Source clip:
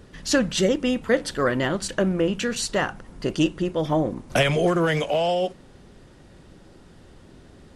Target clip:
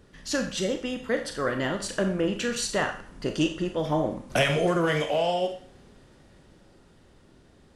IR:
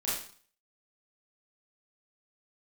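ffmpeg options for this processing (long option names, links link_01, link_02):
-filter_complex "[0:a]dynaudnorm=framelen=200:gausssize=17:maxgain=5.5dB,asplit=2[link_01][link_02];[1:a]atrim=start_sample=2205,lowshelf=frequency=240:gain=-10.5[link_03];[link_02][link_03]afir=irnorm=-1:irlink=0,volume=-8.5dB[link_04];[link_01][link_04]amix=inputs=2:normalize=0,volume=-9dB"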